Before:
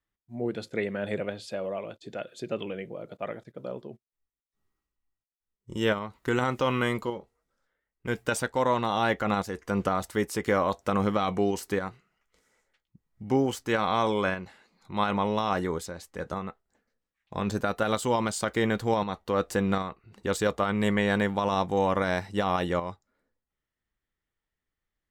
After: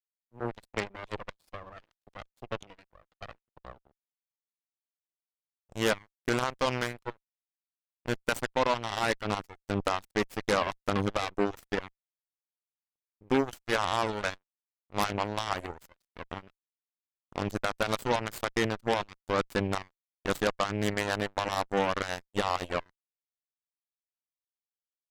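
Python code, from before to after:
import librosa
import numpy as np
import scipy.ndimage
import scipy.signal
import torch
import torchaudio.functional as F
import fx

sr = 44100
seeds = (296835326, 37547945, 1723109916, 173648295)

y = fx.dereverb_blind(x, sr, rt60_s=1.6)
y = np.sign(y) * np.maximum(np.abs(y) - 10.0 ** (-44.5 / 20.0), 0.0)
y = fx.cheby_harmonics(y, sr, harmonics=(5, 6, 7, 8), levels_db=(-13, -18, -11, -13), full_scale_db=-13.0)
y = y * librosa.db_to_amplitude(-2.5)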